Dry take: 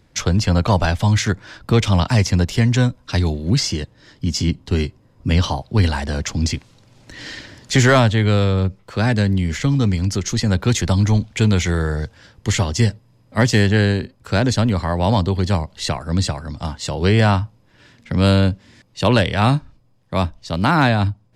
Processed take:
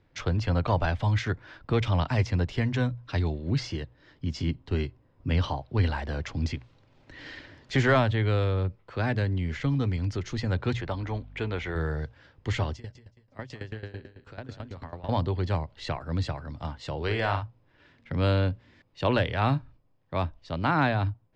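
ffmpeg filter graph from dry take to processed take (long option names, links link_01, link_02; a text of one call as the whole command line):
ffmpeg -i in.wav -filter_complex "[0:a]asettb=1/sr,asplit=3[link_01][link_02][link_03];[link_01]atrim=end=10.744[link_04];[link_02]atrim=start=10.74:end=11.76,asetpts=PTS-STARTPTS,afade=type=in:duration=0.004:curve=qsin,afade=type=out:start_time=1.016:duration=0.004:curve=qsin,bass=frequency=250:gain=-9,treble=frequency=4000:gain=-10,aeval=exprs='val(0)+0.0141*(sin(2*PI*50*n/s)+sin(2*PI*2*50*n/s)/2+sin(2*PI*3*50*n/s)/3+sin(2*PI*4*50*n/s)/4+sin(2*PI*5*50*n/s)/5)':channel_layout=same[link_05];[link_03]atrim=start=11.756[link_06];[link_04][link_05]acrossfade=duration=0.004:curve1=hsin:curve2=qsin[link_07];[link_07][link_06]acrossfade=duration=0.004:curve1=qsin:curve2=hsin,asettb=1/sr,asplit=3[link_08][link_09][link_10];[link_08]atrim=end=12.734[link_11];[link_09]atrim=start=12.73:end=15.09,asetpts=PTS-STARTPTS,afade=type=in:duration=0.004:curve=qsin,afade=type=out:start_time=2.356:duration=0.004:curve=qsin,acompressor=threshold=-23dB:ratio=3:attack=3.2:release=140:knee=1:detection=peak,aecho=1:1:187|374|561:0.299|0.0896|0.0269,atrim=end_sample=104076,aeval=exprs='val(0)*pow(10,-18*if(lt(mod(9.1*n/s,1),2*abs(9.1)/1000),1-mod(9.1*n/s,1)/(2*abs(9.1)/1000),(mod(9.1*n/s,1)-2*abs(9.1)/1000)/(1-2*abs(9.1)/1000))/20)':channel_layout=same[link_12];[link_10]atrim=start=15.086[link_13];[link_11][link_12]acrossfade=duration=0.004:curve1=hsin:curve2=qsin[link_14];[link_14][link_13]acrossfade=duration=0.004:curve1=qsin:curve2=hsin,asettb=1/sr,asplit=3[link_15][link_16][link_17];[link_15]atrim=end=17.024[link_18];[link_16]atrim=start=17.02:end=17.43,asetpts=PTS-STARTPTS,afade=type=in:duration=0.004:curve=qsin,afade=type=out:start_time=0.406:duration=0.004:curve=qsin,equalizer=frequency=170:width_type=o:width=2.3:gain=-9,asplit=2[link_19][link_20];[link_20]adelay=50,volume=-7dB[link_21];[link_19][link_21]amix=inputs=2:normalize=0,atrim=end_sample=18081[link_22];[link_17]atrim=start=17.426[link_23];[link_18][link_22]acrossfade=duration=0.004:curve1=hsin:curve2=qsin[link_24];[link_24][link_23]acrossfade=duration=0.004:curve1=qsin:curve2=hsin,lowpass=3100,equalizer=frequency=200:width=5.7:gain=-11,bandreject=frequency=60:width_type=h:width=6,bandreject=frequency=120:width_type=h:width=6,volume=-8dB" out.wav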